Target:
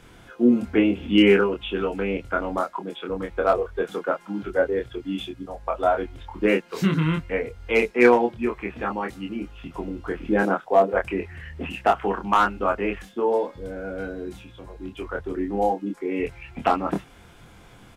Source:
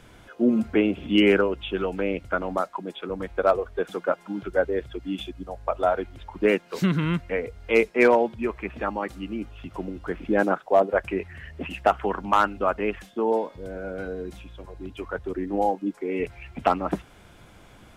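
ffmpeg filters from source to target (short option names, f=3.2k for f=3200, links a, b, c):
-filter_complex "[0:a]bandreject=f=600:w=12,asplit=2[a][b];[b]adelay=25,volume=-3.5dB[c];[a][c]amix=inputs=2:normalize=0"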